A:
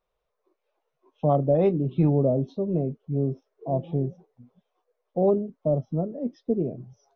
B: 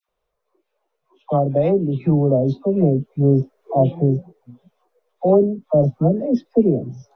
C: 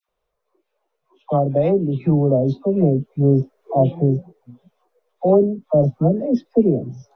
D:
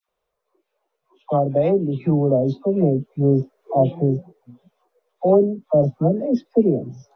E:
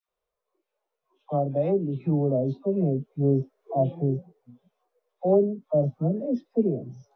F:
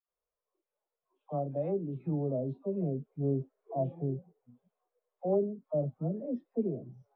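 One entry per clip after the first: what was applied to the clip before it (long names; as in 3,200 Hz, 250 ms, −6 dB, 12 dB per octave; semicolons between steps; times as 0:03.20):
speech leveller within 5 dB 0.5 s; all-pass dispersion lows, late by 91 ms, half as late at 980 Hz; level +7.5 dB
no processing that can be heard
low-shelf EQ 120 Hz −7 dB
harmonic and percussive parts rebalanced percussive −8 dB; level −5 dB
low-pass filter 2,100 Hz 12 dB per octave; level −8.5 dB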